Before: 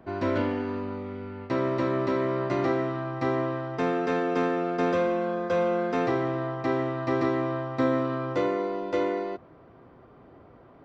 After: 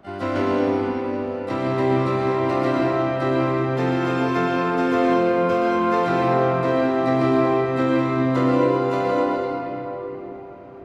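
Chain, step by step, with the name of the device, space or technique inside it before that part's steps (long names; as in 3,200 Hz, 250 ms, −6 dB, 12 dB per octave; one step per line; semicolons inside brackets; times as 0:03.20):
shimmer-style reverb (pitch-shifted copies added +12 semitones −9 dB; convolution reverb RT60 4.0 s, pre-delay 103 ms, DRR −3 dB)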